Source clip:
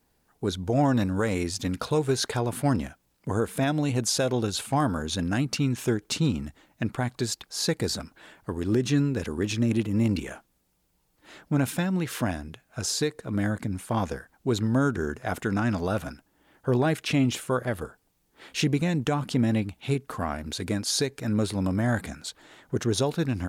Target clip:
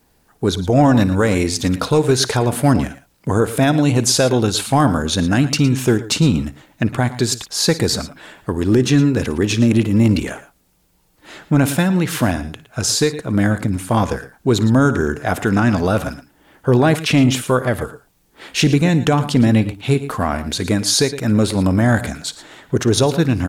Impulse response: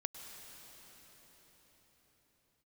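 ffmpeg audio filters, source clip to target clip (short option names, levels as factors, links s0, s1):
-af "aecho=1:1:55|109|116:0.112|0.112|0.141,apsyclip=6.68,volume=0.501"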